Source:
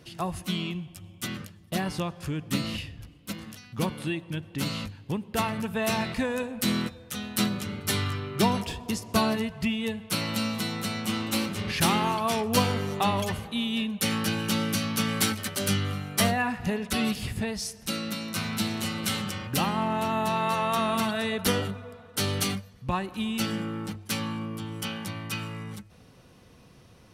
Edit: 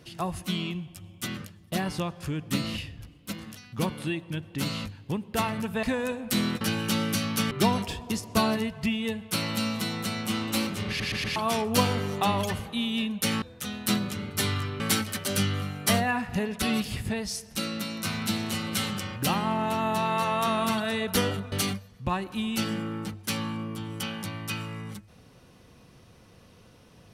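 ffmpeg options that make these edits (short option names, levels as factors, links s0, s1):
-filter_complex "[0:a]asplit=11[s0][s1][s2][s3][s4][s5][s6][s7][s8][s9][s10];[s0]atrim=end=5.832[s11];[s1]atrim=start=6.138:end=6.922[s12];[s2]atrim=start=14.208:end=15.112[s13];[s3]atrim=start=8.298:end=11.792[s14];[s4]atrim=start=11.668:end=11.792[s15];[s5]atrim=start=11.668:end=11.792[s16];[s6]atrim=start=11.668:end=11.792[s17];[s7]atrim=start=12.148:end=14.212[s18];[s8]atrim=start=6.918:end=8.302[s19];[s9]atrim=start=15.108:end=21.832[s20];[s10]atrim=start=22.338[s21];[s11][s12]acrossfade=d=0.004:c1=hsin:c2=hsin[s22];[s22][s13]acrossfade=d=0.004:c1=hsin:c2=hsin[s23];[s23][s14]acrossfade=d=0.004:c1=hsin:c2=hsin[s24];[s24][s15]acrossfade=d=0.004:c1=hsin:c2=hsin[s25];[s25][s16]acrossfade=d=0.004:c1=hsin:c2=hsin[s26];[s26][s17]acrossfade=d=0.004:c1=hsin:c2=hsin[s27];[s27][s18]acrossfade=d=0.004:c1=hsin:c2=hsin[s28];[s28][s19]acrossfade=d=0.004:c1=hsin:c2=hsin[s29];[s29][s20]acrossfade=d=0.004:c1=hsin:c2=hsin[s30];[s30][s21]acrossfade=d=0.004:c1=hsin:c2=hsin"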